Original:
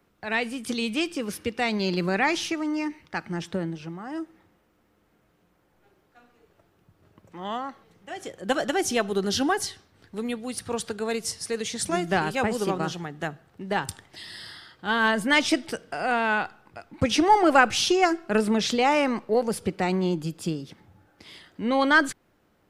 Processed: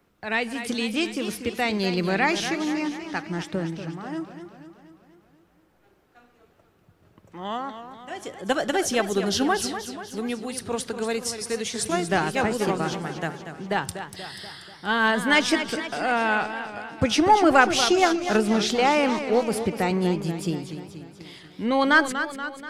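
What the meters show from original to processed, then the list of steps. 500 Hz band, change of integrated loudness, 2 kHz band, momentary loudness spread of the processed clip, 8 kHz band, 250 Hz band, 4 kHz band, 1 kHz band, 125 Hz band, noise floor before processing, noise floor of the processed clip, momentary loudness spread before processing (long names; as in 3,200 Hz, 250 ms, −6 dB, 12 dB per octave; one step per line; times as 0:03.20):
+1.5 dB, +1.5 dB, +1.5 dB, 17 LU, +1.5 dB, +1.5 dB, +1.5 dB, +1.5 dB, +2.0 dB, −66 dBFS, −61 dBFS, 16 LU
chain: feedback echo with a swinging delay time 241 ms, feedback 57%, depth 131 cents, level −10 dB
level +1 dB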